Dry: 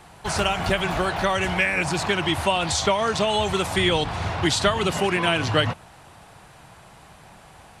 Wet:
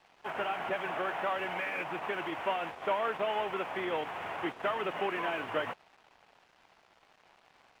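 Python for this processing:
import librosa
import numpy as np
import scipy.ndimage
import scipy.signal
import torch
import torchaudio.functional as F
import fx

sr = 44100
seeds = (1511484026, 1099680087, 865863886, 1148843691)

y = fx.cvsd(x, sr, bps=16000)
y = scipy.signal.sosfilt(scipy.signal.butter(2, 370.0, 'highpass', fs=sr, output='sos'), y)
y = np.sign(y) * np.maximum(np.abs(y) - 10.0 ** (-50.5 / 20.0), 0.0)
y = F.gain(torch.from_numpy(y), -6.5).numpy()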